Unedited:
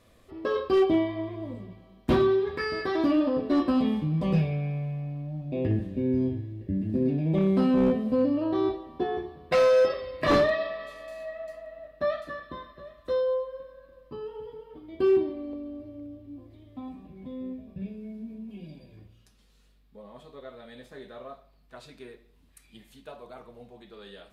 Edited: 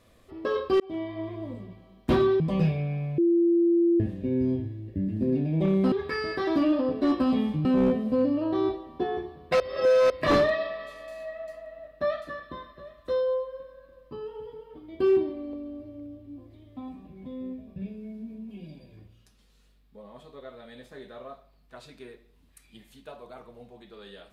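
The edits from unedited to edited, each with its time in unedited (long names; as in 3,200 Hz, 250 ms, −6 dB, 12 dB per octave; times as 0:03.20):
0:00.80–0:01.29: fade in
0:02.40–0:04.13: move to 0:07.65
0:04.91–0:05.73: beep over 341 Hz −18 dBFS
0:09.60–0:10.10: reverse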